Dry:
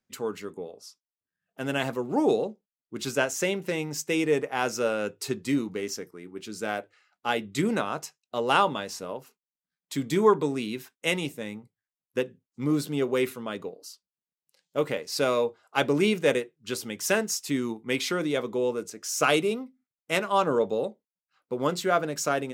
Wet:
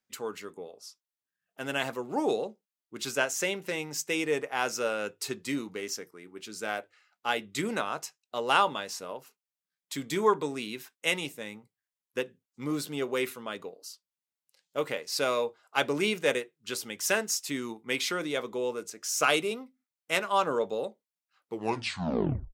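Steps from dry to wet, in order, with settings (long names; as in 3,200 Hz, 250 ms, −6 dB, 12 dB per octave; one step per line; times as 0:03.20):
turntable brake at the end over 1.09 s
low-shelf EQ 450 Hz −9.5 dB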